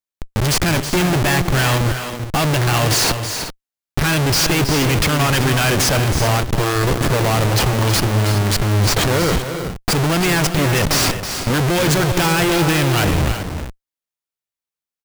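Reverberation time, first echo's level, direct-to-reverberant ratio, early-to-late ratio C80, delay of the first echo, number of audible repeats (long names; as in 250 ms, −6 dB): no reverb audible, −9.5 dB, no reverb audible, no reverb audible, 322 ms, 2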